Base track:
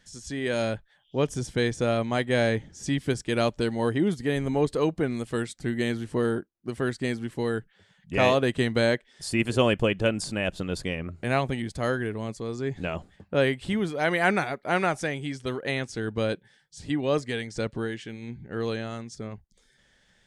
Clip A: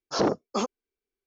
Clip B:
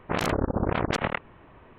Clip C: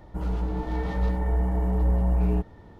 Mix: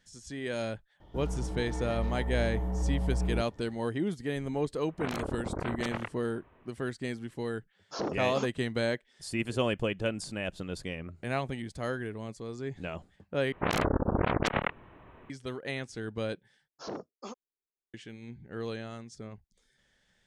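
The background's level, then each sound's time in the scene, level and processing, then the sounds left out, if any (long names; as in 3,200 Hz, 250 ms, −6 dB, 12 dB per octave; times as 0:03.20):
base track −7 dB
0:01.00: mix in C −7.5 dB
0:04.90: mix in B −9.5 dB
0:07.80: mix in A −10 dB
0:13.52: overwrite with B −2 dB
0:16.68: overwrite with A −15.5 dB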